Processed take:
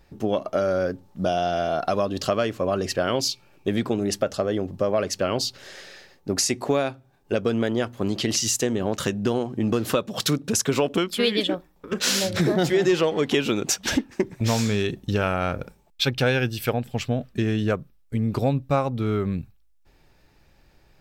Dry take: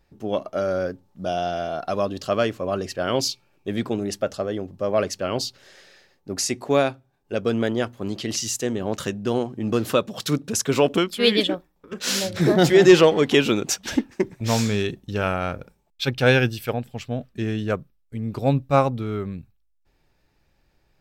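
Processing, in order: compressor 4:1, threshold -28 dBFS, peak gain reduction 16.5 dB; gain +7.5 dB

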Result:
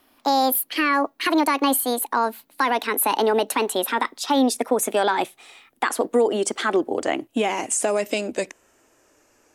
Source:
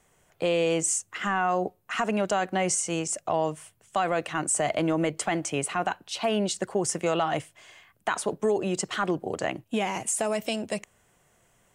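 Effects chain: speed glide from 163% -> 83%; resonant low shelf 210 Hz -8 dB, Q 3; gain +4.5 dB

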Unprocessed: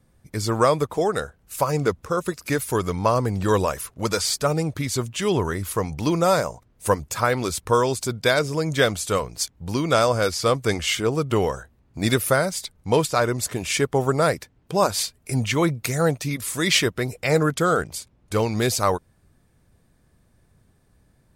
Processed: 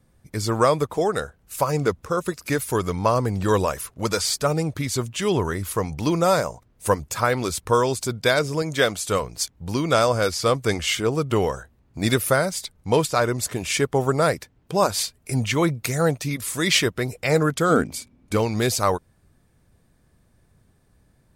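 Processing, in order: 8.62–9.07 low shelf 120 Hz -11.5 dB; 17.69–18.35 small resonant body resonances 250/2300 Hz, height 16 dB -> 12 dB

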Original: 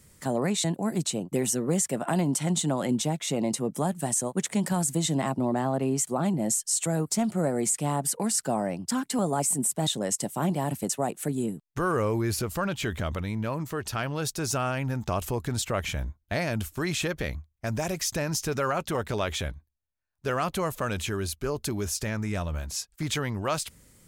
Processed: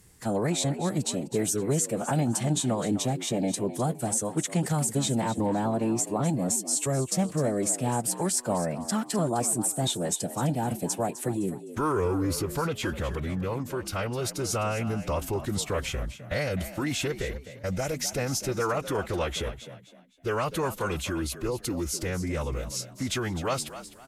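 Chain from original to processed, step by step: formant-preserving pitch shift -3 st; frequency-shifting echo 0.256 s, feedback 31%, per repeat +63 Hz, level -13 dB

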